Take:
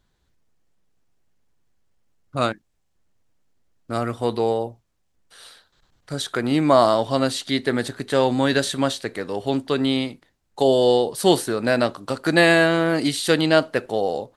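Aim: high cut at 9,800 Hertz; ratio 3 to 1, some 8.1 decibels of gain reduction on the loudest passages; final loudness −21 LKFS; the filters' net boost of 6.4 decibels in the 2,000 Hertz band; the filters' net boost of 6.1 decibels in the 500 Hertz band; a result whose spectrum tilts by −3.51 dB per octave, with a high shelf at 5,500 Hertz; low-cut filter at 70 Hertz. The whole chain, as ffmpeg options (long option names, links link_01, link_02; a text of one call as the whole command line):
ffmpeg -i in.wav -af "highpass=70,lowpass=9800,equalizer=frequency=500:width_type=o:gain=7,equalizer=frequency=2000:width_type=o:gain=8.5,highshelf=frequency=5500:gain=-6.5,acompressor=threshold=-17dB:ratio=3,volume=1dB" out.wav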